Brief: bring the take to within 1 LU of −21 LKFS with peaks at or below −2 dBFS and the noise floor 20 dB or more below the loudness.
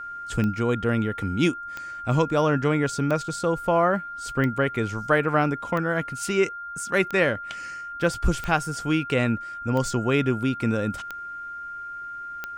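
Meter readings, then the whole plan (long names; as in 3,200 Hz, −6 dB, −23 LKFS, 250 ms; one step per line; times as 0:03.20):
number of clicks 10; interfering tone 1,400 Hz; level of the tone −33 dBFS; integrated loudness −25.0 LKFS; sample peak −7.5 dBFS; target loudness −21.0 LKFS
→ click removal
notch filter 1,400 Hz, Q 30
level +4 dB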